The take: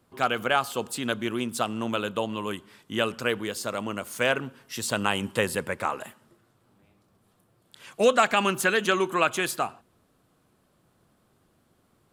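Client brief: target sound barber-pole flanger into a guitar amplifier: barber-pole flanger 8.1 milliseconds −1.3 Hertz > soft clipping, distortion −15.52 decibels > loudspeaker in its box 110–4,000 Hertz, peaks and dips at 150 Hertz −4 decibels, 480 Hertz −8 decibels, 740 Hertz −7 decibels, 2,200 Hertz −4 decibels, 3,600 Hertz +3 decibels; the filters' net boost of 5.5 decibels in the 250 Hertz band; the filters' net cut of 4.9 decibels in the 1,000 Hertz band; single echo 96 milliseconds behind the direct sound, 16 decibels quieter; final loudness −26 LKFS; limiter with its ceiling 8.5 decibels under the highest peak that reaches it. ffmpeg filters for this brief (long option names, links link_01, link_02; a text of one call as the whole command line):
ffmpeg -i in.wav -filter_complex "[0:a]equalizer=frequency=250:width_type=o:gain=8.5,equalizer=frequency=1000:width_type=o:gain=-4.5,alimiter=limit=-16dB:level=0:latency=1,aecho=1:1:96:0.158,asplit=2[link_01][link_02];[link_02]adelay=8.1,afreqshift=-1.3[link_03];[link_01][link_03]amix=inputs=2:normalize=1,asoftclip=threshold=-23dB,highpass=110,equalizer=frequency=150:width_type=q:width=4:gain=-4,equalizer=frequency=480:width_type=q:width=4:gain=-8,equalizer=frequency=740:width_type=q:width=4:gain=-7,equalizer=frequency=2200:width_type=q:width=4:gain=-4,equalizer=frequency=3600:width_type=q:width=4:gain=3,lowpass=frequency=4000:width=0.5412,lowpass=frequency=4000:width=1.3066,volume=9dB" out.wav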